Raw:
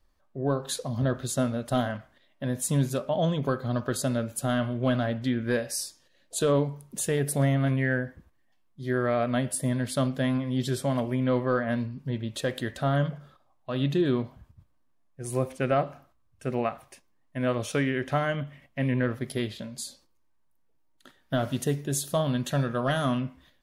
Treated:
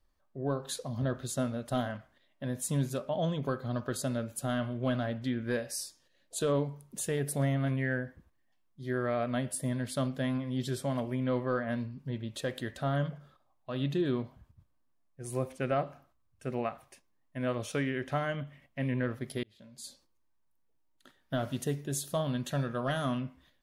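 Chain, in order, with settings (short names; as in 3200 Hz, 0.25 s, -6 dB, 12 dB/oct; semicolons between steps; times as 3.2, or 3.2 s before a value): 19.43–19.84 auto swell 0.702 s; gain -5.5 dB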